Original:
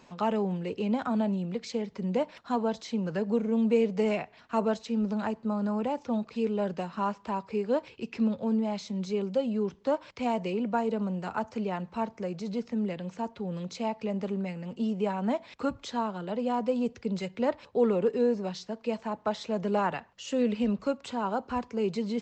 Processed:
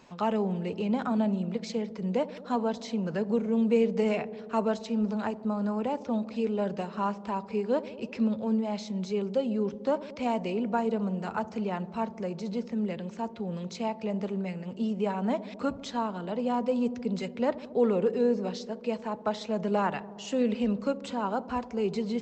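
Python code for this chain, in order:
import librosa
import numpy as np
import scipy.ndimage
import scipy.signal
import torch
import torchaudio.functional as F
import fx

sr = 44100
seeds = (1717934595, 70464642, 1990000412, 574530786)

y = fx.echo_wet_lowpass(x, sr, ms=74, feedback_pct=81, hz=640.0, wet_db=-15.5)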